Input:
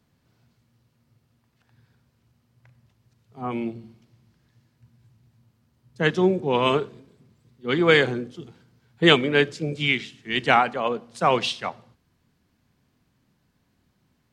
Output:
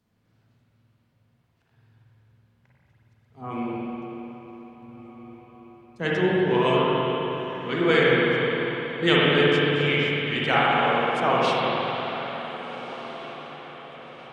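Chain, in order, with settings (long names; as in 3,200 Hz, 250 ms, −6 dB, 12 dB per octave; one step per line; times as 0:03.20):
feedback delay with all-pass diffusion 1,584 ms, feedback 41%, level −14 dB
spring reverb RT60 3.8 s, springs 46/55 ms, chirp 75 ms, DRR −6.5 dB
level −6.5 dB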